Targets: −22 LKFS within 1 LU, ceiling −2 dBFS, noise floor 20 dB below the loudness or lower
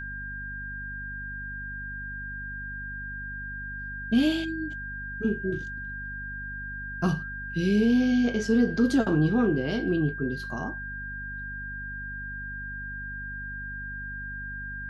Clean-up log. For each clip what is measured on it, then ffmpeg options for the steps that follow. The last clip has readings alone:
mains hum 50 Hz; hum harmonics up to 250 Hz; level of the hum −38 dBFS; interfering tone 1,600 Hz; level of the tone −35 dBFS; integrated loudness −29.5 LKFS; sample peak −12.0 dBFS; target loudness −22.0 LKFS
→ -af "bandreject=frequency=50:width_type=h:width=4,bandreject=frequency=100:width_type=h:width=4,bandreject=frequency=150:width_type=h:width=4,bandreject=frequency=200:width_type=h:width=4,bandreject=frequency=250:width_type=h:width=4"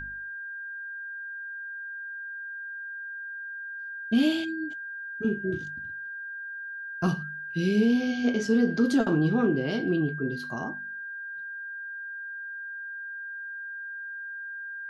mains hum none found; interfering tone 1,600 Hz; level of the tone −35 dBFS
→ -af "bandreject=frequency=1600:width=30"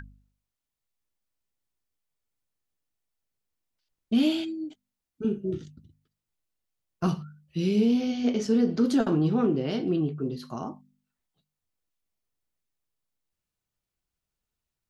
interfering tone none found; integrated loudness −27.0 LKFS; sample peak −13.5 dBFS; target loudness −22.0 LKFS
→ -af "volume=5dB"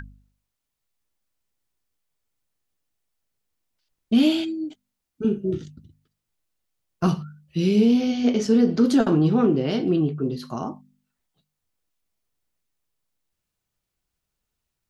integrated loudness −22.0 LKFS; sample peak −8.5 dBFS; background noise floor −82 dBFS

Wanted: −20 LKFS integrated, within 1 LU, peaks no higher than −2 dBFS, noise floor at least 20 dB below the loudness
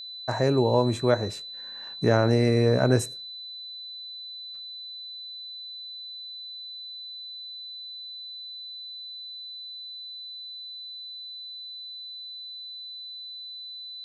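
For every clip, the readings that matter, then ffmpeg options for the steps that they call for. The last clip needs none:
interfering tone 4,000 Hz; level of the tone −37 dBFS; integrated loudness −30.0 LKFS; sample peak −6.5 dBFS; target loudness −20.0 LKFS
→ -af "bandreject=frequency=4000:width=30"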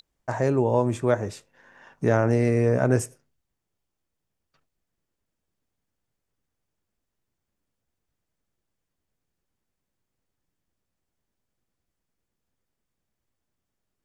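interfering tone none found; integrated loudness −23.5 LKFS; sample peak −6.5 dBFS; target loudness −20.0 LKFS
→ -af "volume=3.5dB"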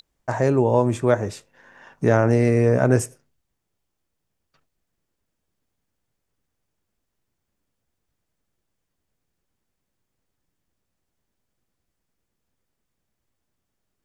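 integrated loudness −20.0 LKFS; sample peak −3.0 dBFS; background noise floor −79 dBFS

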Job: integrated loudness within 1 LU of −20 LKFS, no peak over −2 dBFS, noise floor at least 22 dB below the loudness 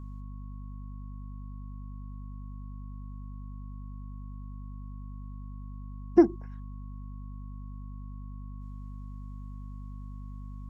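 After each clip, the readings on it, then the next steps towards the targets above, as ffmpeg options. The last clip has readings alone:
mains hum 50 Hz; hum harmonics up to 250 Hz; level of the hum −38 dBFS; interfering tone 1,100 Hz; level of the tone −58 dBFS; integrated loudness −36.5 LKFS; sample peak −8.0 dBFS; target loudness −20.0 LKFS
→ -af "bandreject=frequency=50:width_type=h:width=6,bandreject=frequency=100:width_type=h:width=6,bandreject=frequency=150:width_type=h:width=6,bandreject=frequency=200:width_type=h:width=6,bandreject=frequency=250:width_type=h:width=6"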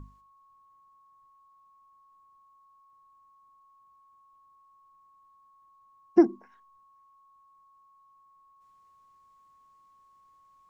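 mains hum none found; interfering tone 1,100 Hz; level of the tone −58 dBFS
→ -af "bandreject=frequency=1100:width=30"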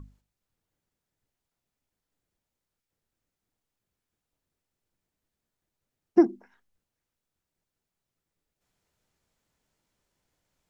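interfering tone none found; integrated loudness −24.5 LKFS; sample peak −8.5 dBFS; target loudness −20.0 LKFS
→ -af "volume=4.5dB"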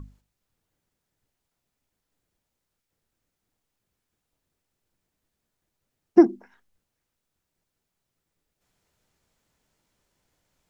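integrated loudness −20.0 LKFS; sample peak −4.0 dBFS; background noise floor −82 dBFS

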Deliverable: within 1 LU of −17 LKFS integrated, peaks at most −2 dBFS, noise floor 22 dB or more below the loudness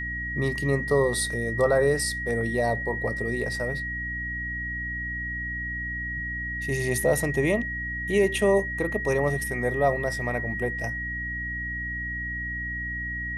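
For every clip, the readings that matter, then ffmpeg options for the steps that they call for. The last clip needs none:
mains hum 60 Hz; hum harmonics up to 300 Hz; level of the hum −34 dBFS; interfering tone 1,900 Hz; level of the tone −30 dBFS; integrated loudness −26.5 LKFS; sample peak −10.5 dBFS; target loudness −17.0 LKFS
→ -af "bandreject=frequency=60:width_type=h:width=6,bandreject=frequency=120:width_type=h:width=6,bandreject=frequency=180:width_type=h:width=6,bandreject=frequency=240:width_type=h:width=6,bandreject=frequency=300:width_type=h:width=6"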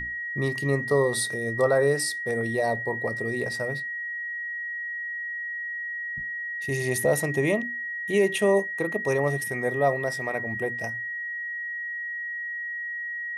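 mains hum none found; interfering tone 1,900 Hz; level of the tone −30 dBFS
→ -af "bandreject=frequency=1900:width=30"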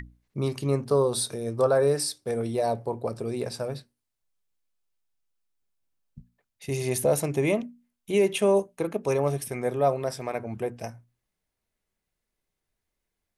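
interfering tone none found; integrated loudness −27.0 LKFS; sample peak −11.0 dBFS; target loudness −17.0 LKFS
→ -af "volume=10dB,alimiter=limit=-2dB:level=0:latency=1"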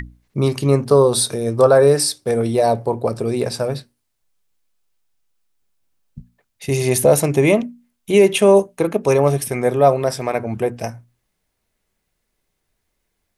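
integrated loudness −17.0 LKFS; sample peak −2.0 dBFS; background noise floor −74 dBFS

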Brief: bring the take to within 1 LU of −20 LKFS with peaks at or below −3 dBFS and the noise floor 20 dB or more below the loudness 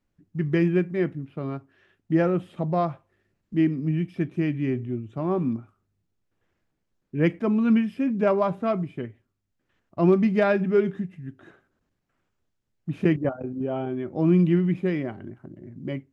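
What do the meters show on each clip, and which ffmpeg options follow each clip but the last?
integrated loudness −25.0 LKFS; sample peak −9.0 dBFS; target loudness −20.0 LKFS
→ -af "volume=5dB"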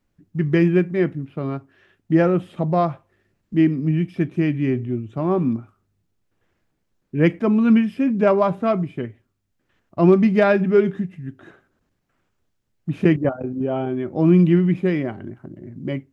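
integrated loudness −20.0 LKFS; sample peak −4.0 dBFS; background noise floor −72 dBFS

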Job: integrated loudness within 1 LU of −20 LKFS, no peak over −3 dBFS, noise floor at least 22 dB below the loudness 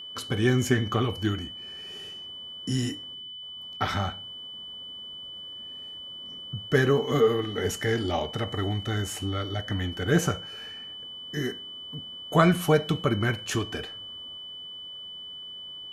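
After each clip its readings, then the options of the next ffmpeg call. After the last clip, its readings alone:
interfering tone 3,000 Hz; level of the tone −38 dBFS; integrated loudness −29.0 LKFS; sample peak −5.5 dBFS; target loudness −20.0 LKFS
→ -af "bandreject=frequency=3000:width=30"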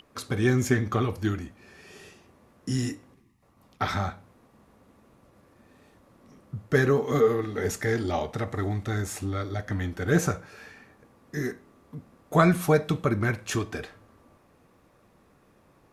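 interfering tone none found; integrated loudness −27.0 LKFS; sample peak −5.5 dBFS; target loudness −20.0 LKFS
→ -af "volume=7dB,alimiter=limit=-3dB:level=0:latency=1"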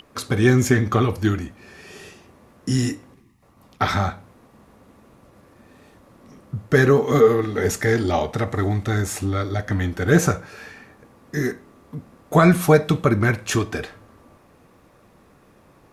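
integrated loudness −20.5 LKFS; sample peak −3.0 dBFS; background noise floor −54 dBFS

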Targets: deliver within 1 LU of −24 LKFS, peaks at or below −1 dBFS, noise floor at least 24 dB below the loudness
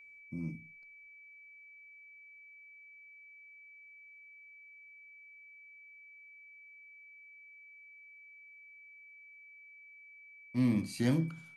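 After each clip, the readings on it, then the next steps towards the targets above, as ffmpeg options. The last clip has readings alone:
interfering tone 2,300 Hz; level of the tone −53 dBFS; integrated loudness −34.0 LKFS; sample peak −18.0 dBFS; target loudness −24.0 LKFS
→ -af "bandreject=frequency=2300:width=30"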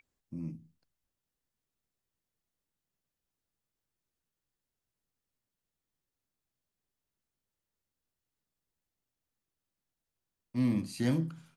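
interfering tone none found; integrated loudness −33.5 LKFS; sample peak −18.0 dBFS; target loudness −24.0 LKFS
→ -af "volume=9.5dB"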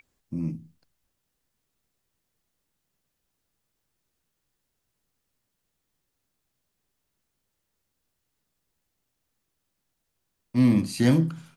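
integrated loudness −24.0 LKFS; sample peak −8.5 dBFS; background noise floor −80 dBFS

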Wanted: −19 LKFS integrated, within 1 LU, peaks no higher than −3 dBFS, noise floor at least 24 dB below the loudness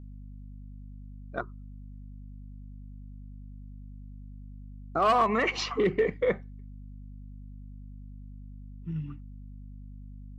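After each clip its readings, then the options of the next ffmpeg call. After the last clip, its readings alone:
mains hum 50 Hz; hum harmonics up to 250 Hz; level of the hum −41 dBFS; integrated loudness −28.5 LKFS; sample peak −15.0 dBFS; target loudness −19.0 LKFS
→ -af "bandreject=frequency=50:width_type=h:width=4,bandreject=frequency=100:width_type=h:width=4,bandreject=frequency=150:width_type=h:width=4,bandreject=frequency=200:width_type=h:width=4,bandreject=frequency=250:width_type=h:width=4"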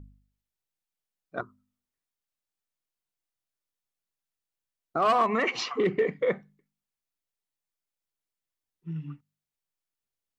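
mains hum none found; integrated loudness −28.0 LKFS; sample peak −14.5 dBFS; target loudness −19.0 LKFS
→ -af "volume=9dB"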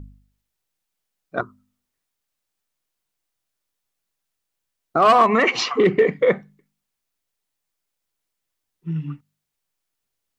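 integrated loudness −19.0 LKFS; sample peak −5.5 dBFS; background noise floor −81 dBFS

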